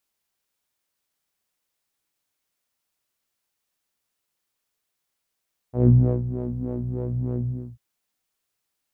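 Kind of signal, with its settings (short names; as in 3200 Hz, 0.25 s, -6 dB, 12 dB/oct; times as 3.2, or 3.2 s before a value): synth patch with filter wobble B2, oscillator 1 saw, filter lowpass, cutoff 160 Hz, Q 2, filter envelope 2 oct, filter decay 0.05 s, attack 0.151 s, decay 0.35 s, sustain -12 dB, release 0.42 s, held 1.63 s, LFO 3.3 Hz, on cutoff 0.8 oct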